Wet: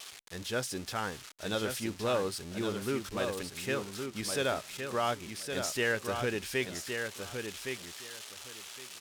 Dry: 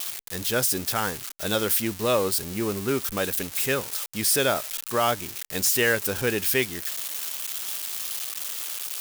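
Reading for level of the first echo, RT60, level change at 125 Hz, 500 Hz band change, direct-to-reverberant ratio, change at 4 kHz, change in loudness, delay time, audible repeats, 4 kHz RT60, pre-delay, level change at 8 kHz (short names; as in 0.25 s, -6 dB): -6.0 dB, none, -6.5 dB, -6.5 dB, none, -8.5 dB, -10.0 dB, 1.115 s, 2, none, none, -13.0 dB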